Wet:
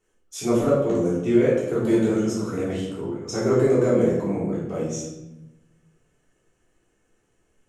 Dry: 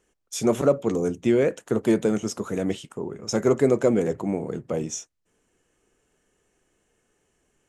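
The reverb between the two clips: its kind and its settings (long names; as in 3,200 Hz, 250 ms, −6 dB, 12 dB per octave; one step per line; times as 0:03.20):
rectangular room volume 370 cubic metres, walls mixed, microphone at 3.4 metres
level −9 dB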